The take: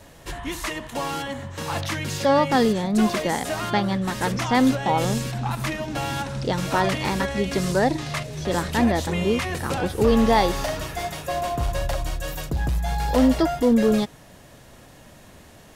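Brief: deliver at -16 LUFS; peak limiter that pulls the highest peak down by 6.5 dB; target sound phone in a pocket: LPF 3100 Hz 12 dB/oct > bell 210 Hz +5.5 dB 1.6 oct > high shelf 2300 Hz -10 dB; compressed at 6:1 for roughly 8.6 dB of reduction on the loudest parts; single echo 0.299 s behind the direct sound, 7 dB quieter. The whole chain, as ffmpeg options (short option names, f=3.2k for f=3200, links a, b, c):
-af "acompressor=threshold=-23dB:ratio=6,alimiter=limit=-20dB:level=0:latency=1,lowpass=3.1k,equalizer=f=210:t=o:w=1.6:g=5.5,highshelf=f=2.3k:g=-10,aecho=1:1:299:0.447,volume=11dB"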